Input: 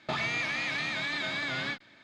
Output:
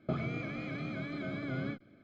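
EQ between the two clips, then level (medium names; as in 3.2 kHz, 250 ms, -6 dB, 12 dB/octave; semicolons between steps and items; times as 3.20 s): boxcar filter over 48 samples; +6.0 dB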